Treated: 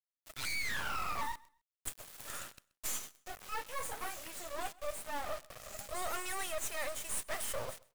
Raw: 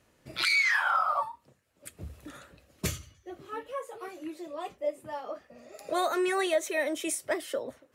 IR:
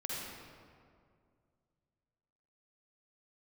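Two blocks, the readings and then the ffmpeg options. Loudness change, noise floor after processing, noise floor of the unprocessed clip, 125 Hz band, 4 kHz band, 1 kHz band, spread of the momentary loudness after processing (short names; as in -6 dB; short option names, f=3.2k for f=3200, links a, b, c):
-10.0 dB, under -85 dBFS, -67 dBFS, -9.5 dB, -8.0 dB, -8.5 dB, 10 LU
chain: -filter_complex "[0:a]highpass=f=630:w=0.5412,highpass=f=630:w=1.3066,highshelf=f=6k:t=q:w=1.5:g=7.5,areverse,acompressor=threshold=-38dB:ratio=8,areverse,asoftclip=type=tanh:threshold=-36dB,acrusher=bits=6:dc=4:mix=0:aa=0.000001,asplit=2[a][b];[b]aecho=0:1:129|258:0.0668|0.0147[c];[a][c]amix=inputs=2:normalize=0,volume=9dB"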